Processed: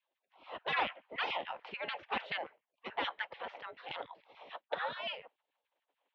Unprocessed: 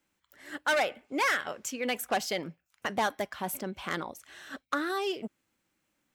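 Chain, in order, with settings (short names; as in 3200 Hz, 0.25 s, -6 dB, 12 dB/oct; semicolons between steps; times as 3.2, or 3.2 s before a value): spectral gate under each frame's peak -15 dB weak; LFO high-pass saw down 6.9 Hz 290–2500 Hz; mistuned SSB -140 Hz 190–3600 Hz; band shelf 670 Hz +8.5 dB 1.3 oct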